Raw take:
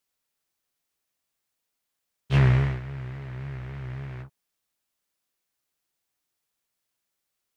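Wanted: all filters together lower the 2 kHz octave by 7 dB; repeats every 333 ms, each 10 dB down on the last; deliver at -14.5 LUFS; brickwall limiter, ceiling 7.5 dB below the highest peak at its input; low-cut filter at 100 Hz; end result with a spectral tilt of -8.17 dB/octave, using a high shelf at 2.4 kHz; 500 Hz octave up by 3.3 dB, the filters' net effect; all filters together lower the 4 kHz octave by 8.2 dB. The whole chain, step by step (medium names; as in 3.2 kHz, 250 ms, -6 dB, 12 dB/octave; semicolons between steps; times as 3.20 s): high-pass 100 Hz; peaking EQ 500 Hz +5 dB; peaking EQ 2 kHz -5.5 dB; treble shelf 2.4 kHz -5 dB; peaking EQ 4 kHz -4.5 dB; peak limiter -17.5 dBFS; feedback delay 333 ms, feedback 32%, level -10 dB; trim +17 dB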